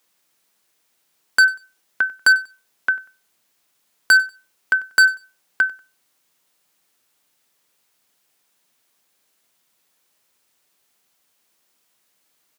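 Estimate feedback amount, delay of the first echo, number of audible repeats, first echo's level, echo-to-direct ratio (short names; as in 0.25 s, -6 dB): 25%, 95 ms, 2, -21.0 dB, -20.5 dB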